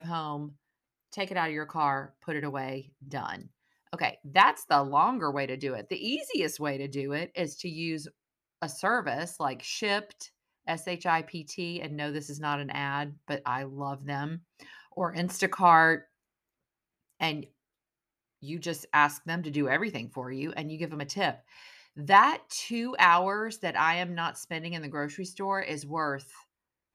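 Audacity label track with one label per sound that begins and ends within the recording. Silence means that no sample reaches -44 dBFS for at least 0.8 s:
17.200000	17.450000	sound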